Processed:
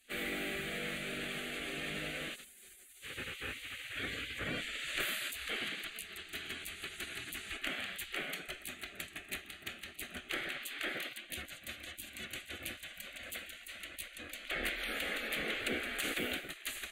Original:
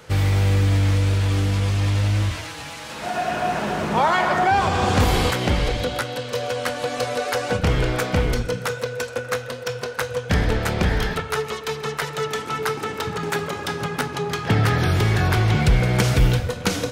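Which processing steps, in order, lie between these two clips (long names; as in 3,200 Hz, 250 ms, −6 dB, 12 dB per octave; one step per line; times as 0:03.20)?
gate on every frequency bin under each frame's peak −20 dB weak
harmonic generator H 6 −39 dB, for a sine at −8 dBFS
phaser with its sweep stopped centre 2,300 Hz, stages 4
level −5 dB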